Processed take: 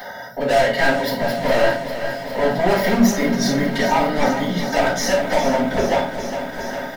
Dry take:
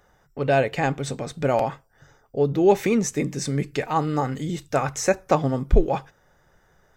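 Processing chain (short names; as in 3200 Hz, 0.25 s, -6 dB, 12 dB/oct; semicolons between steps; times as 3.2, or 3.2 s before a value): 0.76–3.06 minimum comb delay 0.41 ms; HPF 160 Hz 24 dB/oct; comb 3.2 ms, depth 70%; upward compressor, threshold -29 dBFS; fixed phaser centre 1700 Hz, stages 8; hard clip -28.5 dBFS, distortion -3 dB; reverb RT60 0.45 s, pre-delay 3 ms, DRR -7.5 dB; lo-fi delay 0.406 s, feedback 80%, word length 8-bit, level -10.5 dB; gain +2 dB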